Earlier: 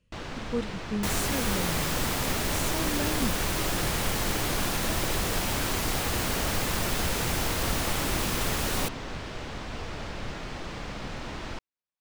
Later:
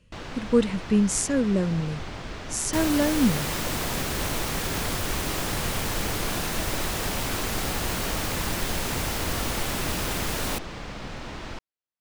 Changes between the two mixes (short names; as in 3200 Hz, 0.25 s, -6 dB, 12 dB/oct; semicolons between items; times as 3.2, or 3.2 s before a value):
speech +10.5 dB; second sound: entry +1.70 s